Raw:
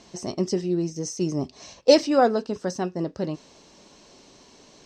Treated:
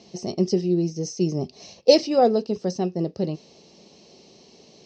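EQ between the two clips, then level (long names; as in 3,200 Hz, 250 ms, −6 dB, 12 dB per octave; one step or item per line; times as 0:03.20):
loudspeaker in its box 120–5,200 Hz, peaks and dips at 120 Hz −5 dB, 280 Hz −10 dB, 590 Hz −4 dB, 1,000 Hz −9 dB, 1,500 Hz −8 dB, 3,500 Hz −5 dB
parametric band 1,600 Hz −11 dB 1.5 octaves
+6.5 dB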